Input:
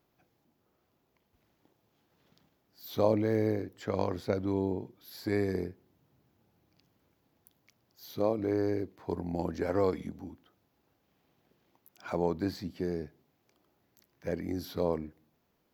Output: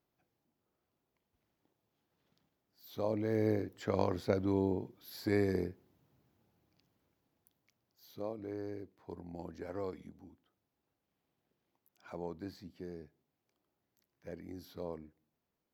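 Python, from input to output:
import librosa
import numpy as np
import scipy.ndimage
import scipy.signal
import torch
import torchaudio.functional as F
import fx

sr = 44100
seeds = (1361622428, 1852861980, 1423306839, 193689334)

y = fx.gain(x, sr, db=fx.line((3.03, -9.5), (3.53, -1.0), (5.69, -1.0), (8.35, -12.0)))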